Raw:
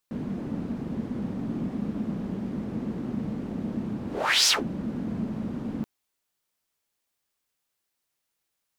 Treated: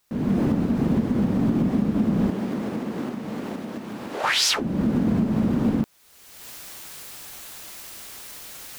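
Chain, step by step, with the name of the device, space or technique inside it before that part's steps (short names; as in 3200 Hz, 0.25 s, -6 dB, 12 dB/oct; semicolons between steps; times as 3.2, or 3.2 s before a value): cheap recorder with automatic gain (white noise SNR 39 dB; recorder AGC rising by 36 dB/s); 2.29–4.23 HPF 360 Hz -> 1300 Hz 6 dB/oct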